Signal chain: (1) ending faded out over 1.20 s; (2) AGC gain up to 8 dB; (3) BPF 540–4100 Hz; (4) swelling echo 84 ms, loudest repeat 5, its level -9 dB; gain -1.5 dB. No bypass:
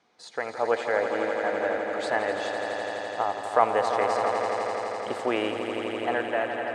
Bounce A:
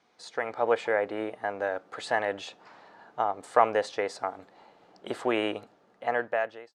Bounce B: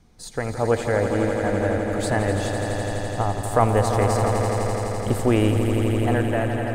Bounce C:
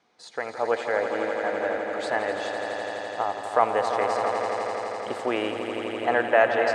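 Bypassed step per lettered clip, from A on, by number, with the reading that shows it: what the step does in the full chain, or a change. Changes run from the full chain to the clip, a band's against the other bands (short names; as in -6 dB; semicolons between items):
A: 4, echo-to-direct 0.5 dB to none; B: 3, 125 Hz band +24.5 dB; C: 1, momentary loudness spread change +3 LU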